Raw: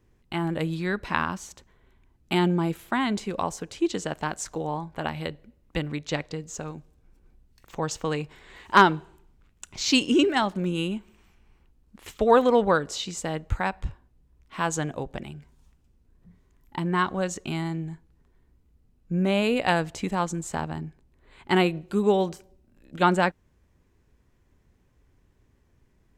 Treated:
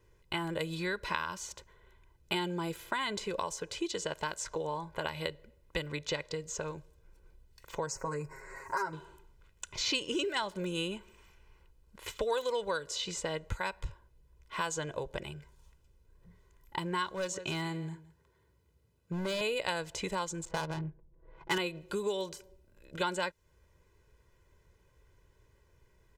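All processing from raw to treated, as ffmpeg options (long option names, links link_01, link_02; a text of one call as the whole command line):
ffmpeg -i in.wav -filter_complex "[0:a]asettb=1/sr,asplit=3[link_01][link_02][link_03];[link_01]atrim=end=7.864[link_04];[link_02]atrim=start=7.86:end=8.93,asetpts=PTS-STARTPTS,afade=type=in:duration=0.004:curve=qsin,afade=type=out:start_time=1.066:duration=0.004:curve=qsin,aecho=1:1:7.4:0.95,atrim=end_sample=47187,acompressor=threshold=-29dB:ratio=2:attack=3.2:release=140:knee=1:detection=peak,asuperstop=centerf=3300:order=4:qfactor=0.92[link_05];[link_03]atrim=start=8.926[link_06];[link_04][link_05]acrossfade=duration=0.004:curve1=hsin:curve2=qsin[link_07];[link_07][link_06]acrossfade=duration=0.004:curve1=qsin:curve2=hsin,asettb=1/sr,asplit=3[link_08][link_09][link_10];[link_08]atrim=end=17.134[link_11];[link_09]atrim=start=17.13:end=19.41,asetpts=PTS-STARTPTS,afade=type=in:duration=0.004:curve=qsin,afade=type=out:start_time=2.276:duration=0.004:curve=qsin,highpass=frequency=73:width=0.5412,highpass=frequency=73:width=1.3066,aecho=1:1:167:0.126,atrim=end_sample=100548,asoftclip=type=hard:threshold=-22.5dB[link_12];[link_10]atrim=start=19.406[link_13];[link_11][link_12]acrossfade=duration=0.004:curve1=hsin:curve2=qsin[link_14];[link_14][link_13]acrossfade=duration=0.004:curve1=qsin:curve2=hsin,asettb=1/sr,asplit=3[link_15][link_16][link_17];[link_15]atrim=end=20.454[link_18];[link_16]atrim=start=20.45:end=21.58,asetpts=PTS-STARTPTS,afade=type=in:duration=0.004:curve=qsin,afade=type=out:start_time=1.126:duration=0.004:curve=qsin,aecho=1:1:6.1:0.96,atrim=end_sample=49833,adynamicsmooth=sensitivity=5.5:basefreq=600[link_19];[link_17]atrim=start=21.576[link_20];[link_18][link_19]acrossfade=duration=0.004:curve1=hsin:curve2=qsin[link_21];[link_21][link_20]acrossfade=duration=0.004:curve1=qsin:curve2=hsin,lowshelf=frequency=290:gain=-6,aecho=1:1:2:0.69,acrossover=split=3200|7600[link_22][link_23][link_24];[link_22]acompressor=threshold=-33dB:ratio=4[link_25];[link_23]acompressor=threshold=-39dB:ratio=4[link_26];[link_24]acompressor=threshold=-53dB:ratio=4[link_27];[link_25][link_26][link_27]amix=inputs=3:normalize=0" out.wav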